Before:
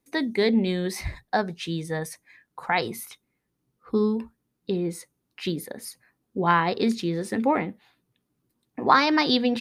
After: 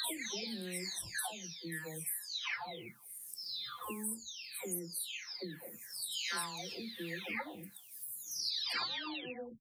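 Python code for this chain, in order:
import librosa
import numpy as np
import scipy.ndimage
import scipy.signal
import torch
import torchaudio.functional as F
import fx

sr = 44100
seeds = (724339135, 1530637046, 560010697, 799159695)

y = fx.spec_delay(x, sr, highs='early', ms=866)
y = F.preemphasis(torch.from_numpy(y), 0.9).numpy()
y = fx.band_squash(y, sr, depth_pct=100)
y = y * librosa.db_to_amplitude(1.5)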